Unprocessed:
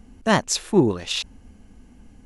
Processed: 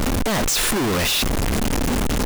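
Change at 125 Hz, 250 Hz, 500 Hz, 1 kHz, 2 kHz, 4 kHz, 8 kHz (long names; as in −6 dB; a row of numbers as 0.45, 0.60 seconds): +5.0, +1.5, 0.0, +2.0, +5.0, +6.0, +7.0 decibels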